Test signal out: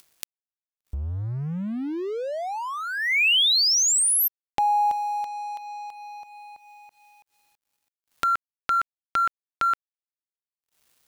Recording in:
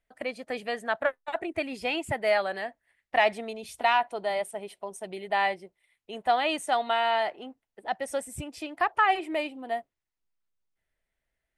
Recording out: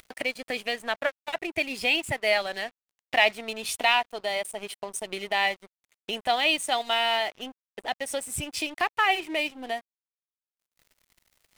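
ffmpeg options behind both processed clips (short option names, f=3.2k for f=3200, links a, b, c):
-af "acompressor=mode=upward:threshold=-26dB:ratio=2.5,highshelf=f=1.9k:t=q:w=1.5:g=7,aeval=exprs='sgn(val(0))*max(abs(val(0))-0.0075,0)':c=same"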